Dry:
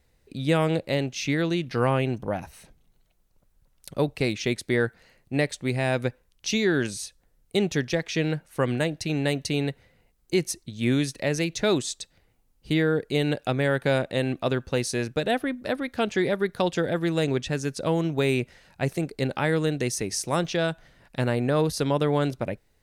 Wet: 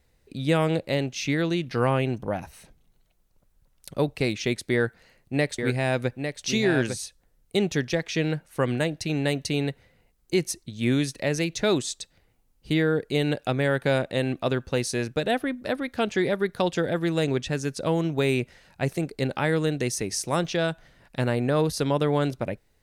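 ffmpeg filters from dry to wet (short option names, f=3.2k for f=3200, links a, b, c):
-filter_complex "[0:a]asettb=1/sr,asplit=3[a][b][c];[a]atrim=end=4.734[d];[b]atrim=start=4.73:end=6.96,asetpts=PTS-STARTPTS,afade=t=in:d=0.004:c=qsin,afade=t=out:st=2.226:d=0.004:c=qsin,aecho=1:1:852:0.473,atrim=end_sample=98343[e];[c]atrim=start=6.956[f];[d][e]acrossfade=d=0.004:c1=hsin:c2=qsin[g];[g][f]acrossfade=d=0.004:c1=qsin:c2=hsin"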